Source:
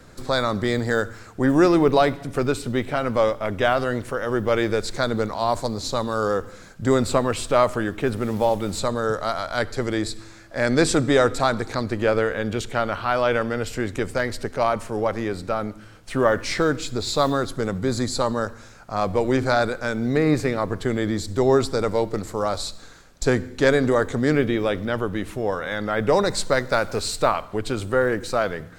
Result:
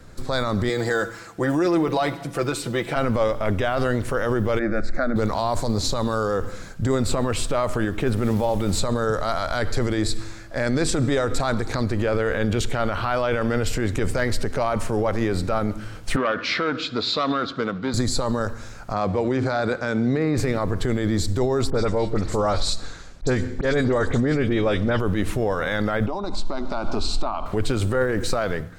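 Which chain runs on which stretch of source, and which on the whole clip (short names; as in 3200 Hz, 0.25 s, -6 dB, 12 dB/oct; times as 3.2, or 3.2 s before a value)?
0.69–2.96 HPF 290 Hz 6 dB/oct + comb 6 ms, depth 61%
4.59–5.16 LPF 2700 Hz + fixed phaser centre 630 Hz, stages 8
16.16–17.94 speaker cabinet 290–4200 Hz, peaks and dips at 380 Hz -8 dB, 560 Hz -5 dB, 860 Hz -10 dB, 1300 Hz +4 dB, 1900 Hz -5 dB + core saturation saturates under 1000 Hz
18.93–20.38 HPF 110 Hz + air absorption 70 m
21.7–25 LPF 8100 Hz + dispersion highs, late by 56 ms, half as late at 2600 Hz + auto swell 0.122 s
26.06–27.46 LPF 3400 Hz + fixed phaser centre 490 Hz, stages 6 + compressor 10:1, threshold -30 dBFS
whole clip: low shelf 98 Hz +9 dB; AGC; limiter -11.5 dBFS; gain -1.5 dB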